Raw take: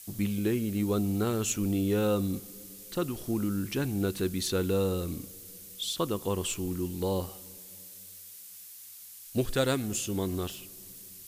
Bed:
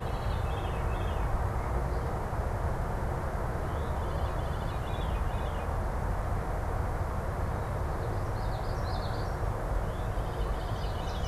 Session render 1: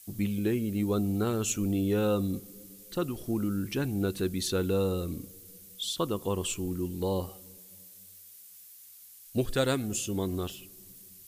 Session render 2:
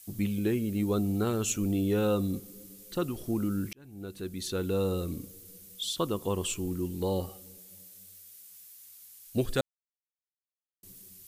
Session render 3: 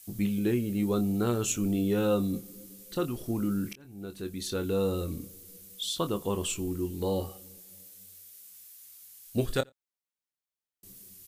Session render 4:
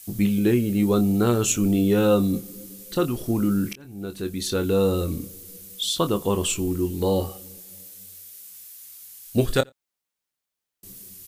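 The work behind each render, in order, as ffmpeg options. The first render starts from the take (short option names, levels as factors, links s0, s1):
-af "afftdn=nr=6:nf=-48"
-filter_complex "[0:a]asettb=1/sr,asplit=3[s0][s1][s2];[s0]atrim=end=7.104[s3];[s1]atrim=start=7.1:end=8.41,asetpts=PTS-STARTPTS,afade=t=in:d=0.004:c=qsin,afade=t=out:st=1.306:d=0.004:c=qsin,asuperstop=centerf=1000:order=8:qfactor=6.9[s4];[s2]atrim=start=8.406[s5];[s3][s4]acrossfade=d=0.004:c1=hsin:c2=qsin[s6];[s6][s5]acrossfade=d=0.004:c1=qsin:c2=hsin,asplit=4[s7][s8][s9][s10];[s7]atrim=end=3.73,asetpts=PTS-STARTPTS,afade=t=out:st=3.726:d=0.004:c=hsin[s11];[s8]atrim=start=3.73:end=9.61,asetpts=PTS-STARTPTS,afade=t=in:d=1.22,afade=t=out:st=5.876:d=0.004:c=hsin[s12];[s9]atrim=start=9.61:end=10.83,asetpts=PTS-STARTPTS,volume=0[s13];[s10]atrim=start=10.83,asetpts=PTS-STARTPTS,afade=t=in:d=0.004:c=hsin[s14];[s11][s12][s13][s14]concat=n=4:v=0:a=1"
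-filter_complex "[0:a]asplit=2[s0][s1];[s1]adelay=25,volume=0.355[s2];[s0][s2]amix=inputs=2:normalize=0,asplit=2[s3][s4];[s4]adelay=87.46,volume=0.0316,highshelf=f=4000:g=-1.97[s5];[s3][s5]amix=inputs=2:normalize=0"
-af "volume=2.37"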